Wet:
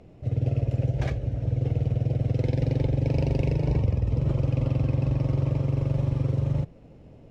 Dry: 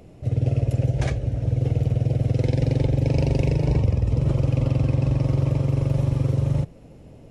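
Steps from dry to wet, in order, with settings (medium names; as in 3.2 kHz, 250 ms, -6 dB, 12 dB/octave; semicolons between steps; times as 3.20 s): median filter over 5 samples; distance through air 55 m; trim -3.5 dB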